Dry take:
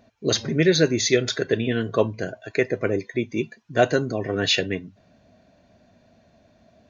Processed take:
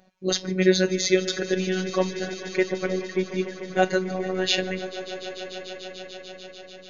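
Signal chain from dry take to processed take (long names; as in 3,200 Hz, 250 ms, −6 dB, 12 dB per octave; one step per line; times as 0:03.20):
phases set to zero 186 Hz
echo that builds up and dies away 147 ms, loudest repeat 5, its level −17 dB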